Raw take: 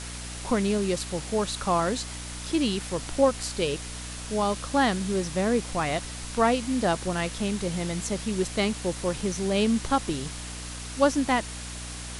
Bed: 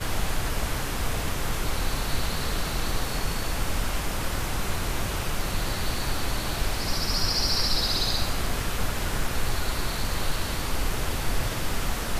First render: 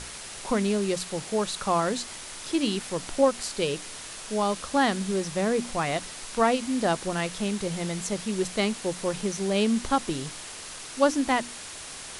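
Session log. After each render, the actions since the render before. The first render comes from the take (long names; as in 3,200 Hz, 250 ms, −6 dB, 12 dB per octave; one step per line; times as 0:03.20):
mains-hum notches 60/120/180/240/300 Hz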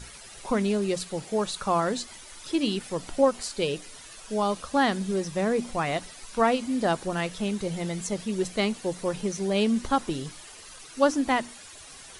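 broadband denoise 11 dB, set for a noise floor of −41 dBFS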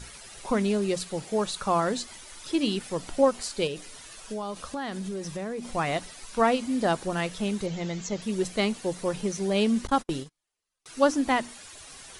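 0:03.67–0:05.71: downward compressor, threshold −30 dBFS
0:07.66–0:08.22: elliptic low-pass filter 7,000 Hz
0:09.87–0:10.86: noise gate −34 dBFS, range −40 dB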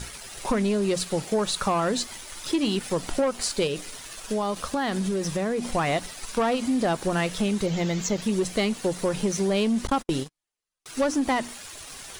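leveller curve on the samples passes 2
downward compressor, threshold −21 dBFS, peak gain reduction 8 dB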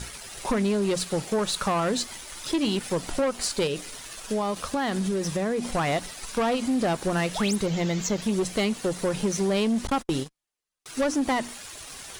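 0:07.35–0:07.56: sound drawn into the spectrogram rise 550–12,000 Hz −31 dBFS
asymmetric clip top −22 dBFS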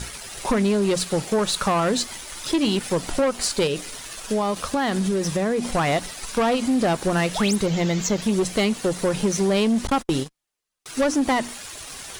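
level +4 dB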